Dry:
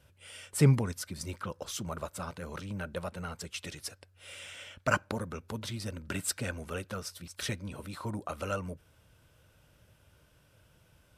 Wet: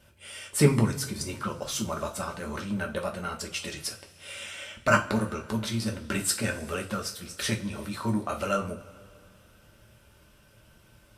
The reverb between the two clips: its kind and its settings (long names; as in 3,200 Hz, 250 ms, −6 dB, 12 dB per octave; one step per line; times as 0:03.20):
coupled-rooms reverb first 0.27 s, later 2.5 s, from −22 dB, DRR 1 dB
level +4 dB